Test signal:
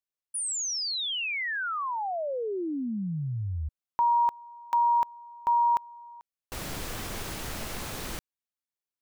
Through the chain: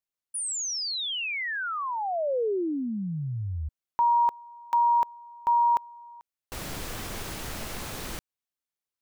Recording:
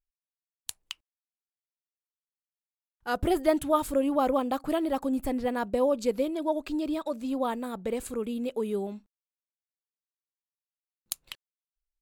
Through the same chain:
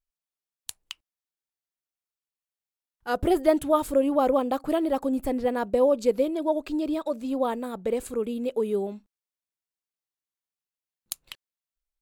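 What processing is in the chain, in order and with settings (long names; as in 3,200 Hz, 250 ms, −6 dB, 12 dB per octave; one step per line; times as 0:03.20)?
dynamic equaliser 470 Hz, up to +5 dB, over −38 dBFS, Q 1.1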